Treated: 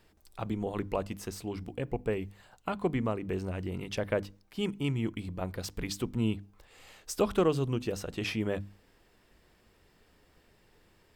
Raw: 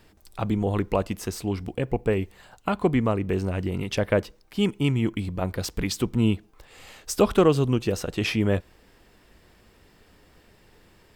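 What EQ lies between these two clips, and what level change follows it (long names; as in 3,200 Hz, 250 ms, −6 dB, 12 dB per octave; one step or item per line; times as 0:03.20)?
mains-hum notches 50/100/150/200/250/300 Hz
−7.5 dB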